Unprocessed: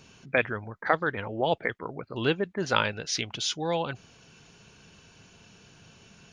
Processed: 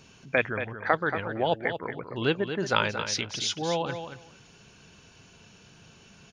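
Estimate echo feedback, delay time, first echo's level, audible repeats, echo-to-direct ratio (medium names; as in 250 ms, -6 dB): 15%, 229 ms, -9.0 dB, 2, -9.0 dB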